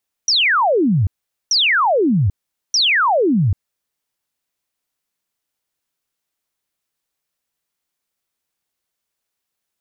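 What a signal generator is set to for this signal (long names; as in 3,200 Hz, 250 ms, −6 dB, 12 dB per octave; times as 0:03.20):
repeated falling chirps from 6,000 Hz, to 85 Hz, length 0.79 s sine, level −12 dB, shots 3, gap 0.44 s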